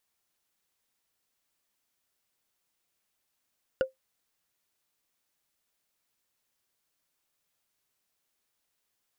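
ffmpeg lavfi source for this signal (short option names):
-f lavfi -i "aevalsrc='0.126*pow(10,-3*t/0.14)*sin(2*PI*525*t)+0.0562*pow(10,-3*t/0.041)*sin(2*PI*1447.4*t)+0.0251*pow(10,-3*t/0.018)*sin(2*PI*2837.1*t)+0.0112*pow(10,-3*t/0.01)*sin(2*PI*4689.8*t)+0.00501*pow(10,-3*t/0.006)*sin(2*PI*7003.5*t)':d=0.45:s=44100"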